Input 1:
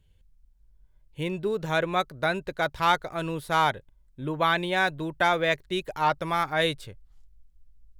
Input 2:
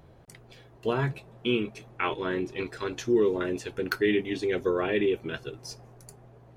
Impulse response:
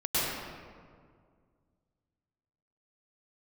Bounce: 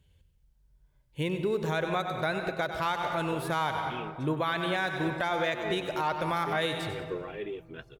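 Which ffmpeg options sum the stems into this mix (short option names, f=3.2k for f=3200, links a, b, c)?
-filter_complex "[0:a]highpass=51,volume=1dB,asplit=3[a][b][c];[b]volume=-21dB[d];[c]volume=-11.5dB[e];[1:a]aphaser=in_gain=1:out_gain=1:delay=2.4:decay=0.42:speed=1.5:type=sinusoidal,adelay=2450,volume=-13.5dB[f];[2:a]atrim=start_sample=2205[g];[d][g]afir=irnorm=-1:irlink=0[h];[e]aecho=0:1:95|190|285|380|475:1|0.38|0.144|0.0549|0.0209[i];[a][f][h][i]amix=inputs=4:normalize=0,alimiter=limit=-19.5dB:level=0:latency=1:release=207"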